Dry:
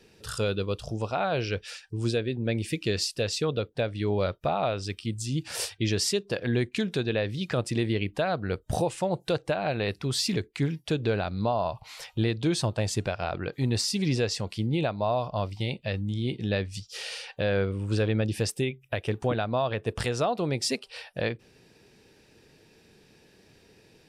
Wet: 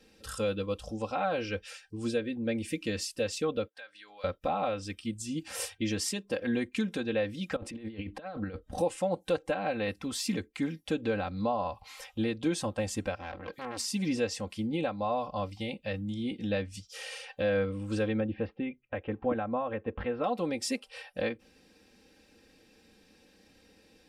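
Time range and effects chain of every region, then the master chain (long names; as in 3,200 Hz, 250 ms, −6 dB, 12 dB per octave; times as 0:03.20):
0:03.68–0:04.24: high-pass filter 1,100 Hz + parametric band 1,600 Hz +10 dB 0.25 octaves + downward compressor 2 to 1, threshold −50 dBFS
0:07.56–0:08.78: low-pass filter 10,000 Hz + parametric band 7,200 Hz −10.5 dB 1.8 octaves + compressor whose output falls as the input rises −33 dBFS, ratio −0.5
0:13.16–0:13.80: high-shelf EQ 9,000 Hz +5 dB + saturating transformer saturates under 1,600 Hz
0:18.20–0:20.24: Bessel low-pass filter 1,700 Hz, order 6 + bad sample-rate conversion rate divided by 4×, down none, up filtered
whole clip: dynamic equaliser 4,300 Hz, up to −7 dB, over −50 dBFS, Q 1.9; comb filter 3.8 ms, depth 86%; level −5 dB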